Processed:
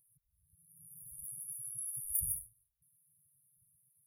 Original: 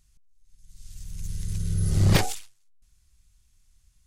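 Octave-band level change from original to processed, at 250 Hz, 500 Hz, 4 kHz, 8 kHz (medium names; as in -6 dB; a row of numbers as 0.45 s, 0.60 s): under -35 dB, under -40 dB, under -40 dB, -1.0 dB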